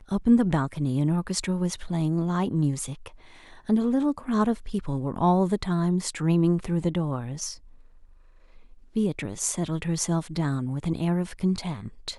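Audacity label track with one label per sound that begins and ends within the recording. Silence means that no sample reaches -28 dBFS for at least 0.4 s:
3.690000	7.510000	sound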